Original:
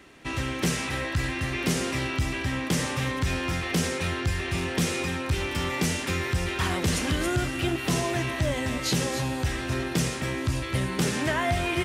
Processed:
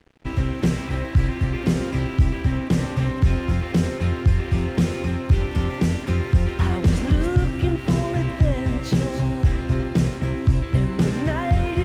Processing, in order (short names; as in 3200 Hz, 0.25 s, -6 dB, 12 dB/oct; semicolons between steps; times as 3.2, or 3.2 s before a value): tilt -3 dB/oct; crossover distortion -45.5 dBFS